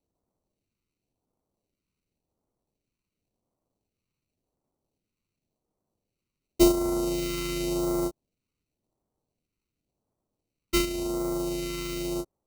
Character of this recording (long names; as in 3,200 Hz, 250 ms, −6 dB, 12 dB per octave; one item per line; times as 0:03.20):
aliases and images of a low sample rate 1,700 Hz, jitter 0%
phaser sweep stages 2, 0.91 Hz, lowest notch 690–2,600 Hz